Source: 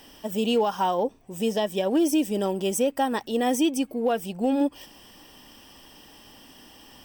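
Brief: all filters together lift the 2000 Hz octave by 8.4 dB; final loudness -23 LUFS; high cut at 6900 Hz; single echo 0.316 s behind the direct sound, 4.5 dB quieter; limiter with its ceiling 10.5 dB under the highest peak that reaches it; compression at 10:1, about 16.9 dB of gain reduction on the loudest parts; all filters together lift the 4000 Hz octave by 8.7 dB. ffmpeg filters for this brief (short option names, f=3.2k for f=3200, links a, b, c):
-af "lowpass=6.9k,equalizer=f=2k:t=o:g=8,equalizer=f=4k:t=o:g=9,acompressor=threshold=-35dB:ratio=10,alimiter=level_in=10dB:limit=-24dB:level=0:latency=1,volume=-10dB,aecho=1:1:316:0.596,volume=18.5dB"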